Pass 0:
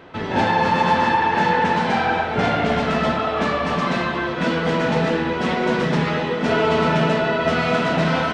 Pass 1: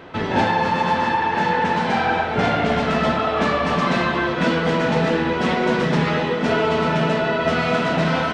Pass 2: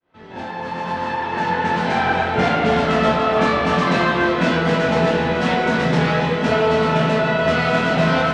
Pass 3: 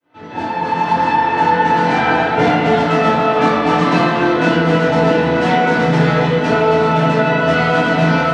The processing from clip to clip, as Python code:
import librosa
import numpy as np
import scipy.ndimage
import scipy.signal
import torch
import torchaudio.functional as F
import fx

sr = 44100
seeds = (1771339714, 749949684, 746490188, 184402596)

y1 = fx.rider(x, sr, range_db=10, speed_s=0.5)
y2 = fx.fade_in_head(y1, sr, length_s=2.09)
y2 = fx.doubler(y2, sr, ms=23.0, db=-4)
y2 = y2 + 10.0 ** (-10.5 / 20.0) * np.pad(y2, (int(288 * sr / 1000.0), 0))[:len(y2)]
y3 = scipy.signal.sosfilt(scipy.signal.butter(2, 100.0, 'highpass', fs=sr, output='sos'), y2)
y3 = fx.rev_fdn(y3, sr, rt60_s=0.35, lf_ratio=1.35, hf_ratio=0.55, size_ms=20.0, drr_db=-2.0)
y3 = fx.rider(y3, sr, range_db=4, speed_s=0.5)
y3 = y3 * librosa.db_to_amplitude(-1.0)